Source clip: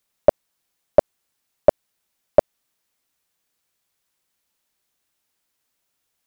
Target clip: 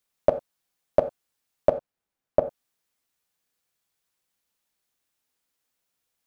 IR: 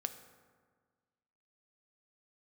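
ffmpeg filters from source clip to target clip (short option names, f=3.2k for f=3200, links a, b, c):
-filter_complex "[0:a]asplit=3[a][b][c];[a]afade=t=out:st=1.69:d=0.02[d];[b]highshelf=f=2.1k:g=-11,afade=t=in:st=1.69:d=0.02,afade=t=out:st=2.39:d=0.02[e];[c]afade=t=in:st=2.39:d=0.02[f];[d][e][f]amix=inputs=3:normalize=0[g];[1:a]atrim=start_sample=2205,atrim=end_sample=4410[h];[g][h]afir=irnorm=-1:irlink=0,volume=-3.5dB"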